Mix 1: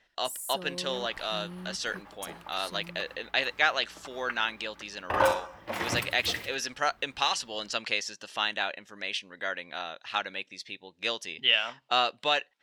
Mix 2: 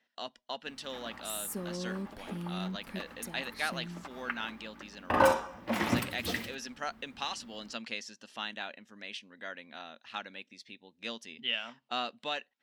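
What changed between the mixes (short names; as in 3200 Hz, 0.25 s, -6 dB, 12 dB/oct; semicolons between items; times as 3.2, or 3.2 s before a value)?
speech -9.5 dB; first sound: entry +1.00 s; master: add bell 230 Hz +14 dB 0.45 oct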